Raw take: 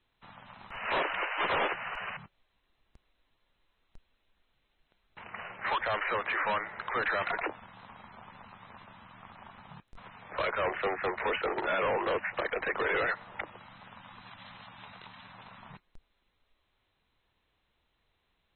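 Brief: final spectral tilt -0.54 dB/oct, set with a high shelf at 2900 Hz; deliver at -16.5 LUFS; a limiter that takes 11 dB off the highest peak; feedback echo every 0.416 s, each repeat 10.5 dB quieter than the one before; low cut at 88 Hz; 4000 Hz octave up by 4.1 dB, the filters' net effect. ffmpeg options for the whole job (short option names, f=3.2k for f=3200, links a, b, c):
-af "highpass=88,highshelf=f=2.9k:g=-3.5,equalizer=f=4k:t=o:g=9,alimiter=level_in=6.5dB:limit=-24dB:level=0:latency=1,volume=-6.5dB,aecho=1:1:416|832|1248:0.299|0.0896|0.0269,volume=23.5dB"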